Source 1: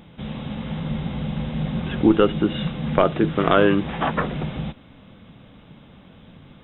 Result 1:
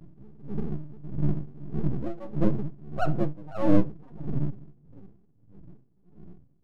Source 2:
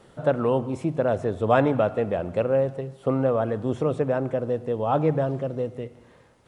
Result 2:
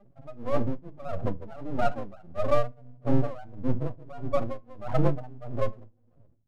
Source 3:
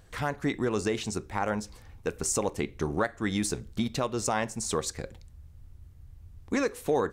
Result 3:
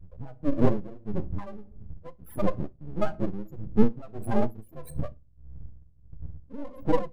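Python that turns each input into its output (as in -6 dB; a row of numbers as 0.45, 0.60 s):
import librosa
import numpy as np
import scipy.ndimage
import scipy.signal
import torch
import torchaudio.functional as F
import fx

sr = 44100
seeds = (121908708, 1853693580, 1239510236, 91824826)

y = fx.partial_stretch(x, sr, pct=112)
y = scipy.signal.sosfilt(scipy.signal.ellip(3, 1.0, 40, [950.0, 6500.0], 'bandstop', fs=sr, output='sos'), y)
y = fx.low_shelf(y, sr, hz=380.0, db=3.0)
y = 10.0 ** (-11.5 / 20.0) * np.tanh(y / 10.0 ** (-11.5 / 20.0))
y = fx.notch_comb(y, sr, f0_hz=440.0)
y = fx.spec_topn(y, sr, count=4)
y = np.maximum(y, 0.0)
y = fx.room_shoebox(y, sr, seeds[0], volume_m3=240.0, walls='furnished', distance_m=0.35)
y = y * 10.0 ** (-22 * (0.5 - 0.5 * np.cos(2.0 * np.pi * 1.6 * np.arange(len(y)) / sr)) / 20.0)
y = y * 10.0 ** (-26 / 20.0) / np.sqrt(np.mean(np.square(y)))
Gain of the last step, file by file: +7.5, +8.0, +17.0 dB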